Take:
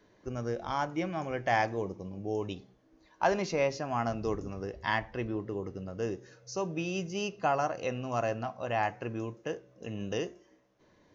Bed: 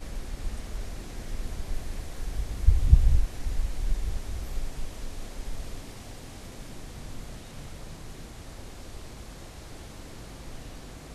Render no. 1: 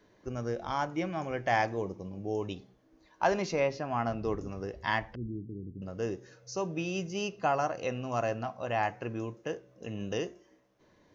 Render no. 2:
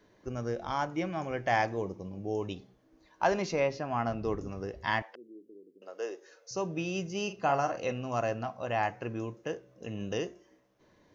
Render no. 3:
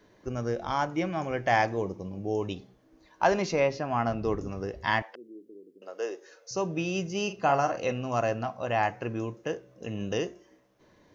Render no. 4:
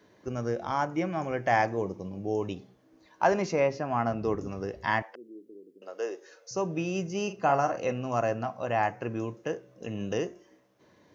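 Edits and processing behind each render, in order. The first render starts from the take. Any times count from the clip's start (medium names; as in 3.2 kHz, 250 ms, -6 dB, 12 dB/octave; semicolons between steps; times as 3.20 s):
3.60–4.38 s: low-pass 4.3 kHz; 5.15–5.82 s: inverse Chebyshev low-pass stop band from 770 Hz, stop band 50 dB
5.02–6.51 s: high-pass 410 Hz 24 dB/octave; 7.23–7.92 s: doubling 43 ms -9 dB
trim +3.5 dB
high-pass 85 Hz; dynamic bell 3.7 kHz, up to -8 dB, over -51 dBFS, Q 1.5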